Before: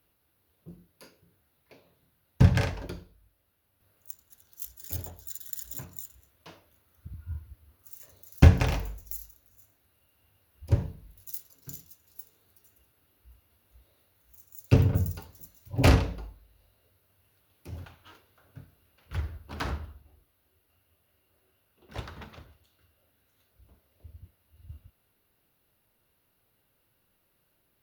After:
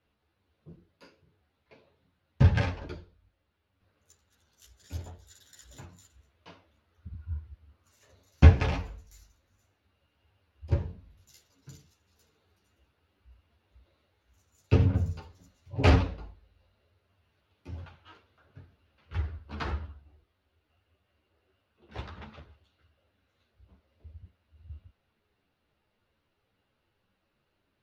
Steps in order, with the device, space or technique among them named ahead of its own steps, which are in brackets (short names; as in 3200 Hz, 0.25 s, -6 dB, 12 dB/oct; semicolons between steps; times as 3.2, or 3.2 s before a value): string-machine ensemble chorus (ensemble effect; LPF 4400 Hz 12 dB/oct); gain +2 dB